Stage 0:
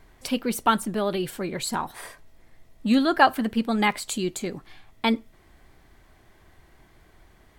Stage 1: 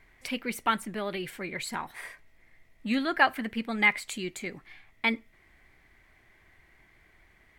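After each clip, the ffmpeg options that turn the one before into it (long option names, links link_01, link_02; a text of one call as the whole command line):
ffmpeg -i in.wav -af "equalizer=frequency=2100:width=2:gain=14,volume=-8.5dB" out.wav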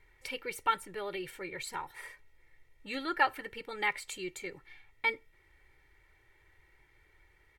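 ffmpeg -i in.wav -af "aecho=1:1:2.2:0.88,volume=-7dB" out.wav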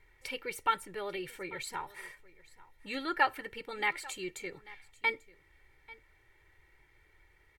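ffmpeg -i in.wav -af "aecho=1:1:841:0.0891" out.wav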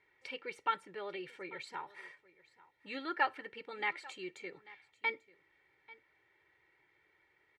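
ffmpeg -i in.wav -af "highpass=190,lowpass=4300,volume=-4dB" out.wav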